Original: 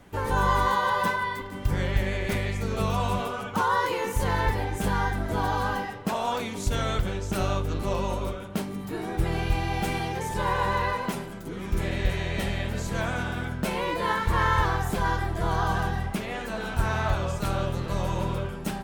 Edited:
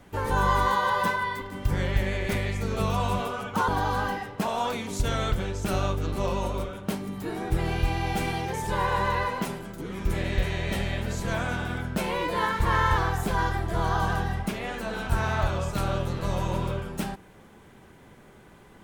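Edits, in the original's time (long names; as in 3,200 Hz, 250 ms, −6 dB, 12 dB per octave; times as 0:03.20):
0:03.68–0:05.35: remove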